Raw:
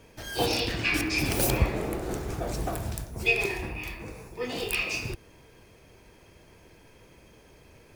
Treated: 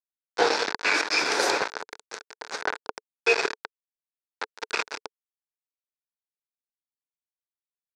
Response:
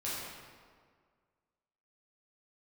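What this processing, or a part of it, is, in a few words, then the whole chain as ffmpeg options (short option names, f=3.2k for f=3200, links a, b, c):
hand-held game console: -filter_complex "[0:a]asettb=1/sr,asplit=3[a][b][c];[a]atrim=end=0.934[d];[b]atrim=start=0.93:end=2.62,asetpts=PTS-STARTPTS,afade=t=in:d=0.004:c=qsin,afade=t=out:st=1.686:d=0.004:c=qsin,aemphasis=mode=production:type=bsi[e];[c]atrim=start=2.616[f];[d][e]acrossfade=d=0.004:c1=hsin:c2=qsin[g];[g][f]acrossfade=d=0.004:c1=qsin:c2=hsin,acrusher=bits=3:mix=0:aa=0.000001,highpass=410,equalizer=f=440:t=q:w=4:g=8,equalizer=f=920:t=q:w=4:g=6,equalizer=f=1.5k:t=q:w=4:g=9,equalizer=f=3k:t=q:w=4:g=-9,lowpass=f=5.4k:w=0.5412,lowpass=f=5.4k:w=1.3066,volume=3dB"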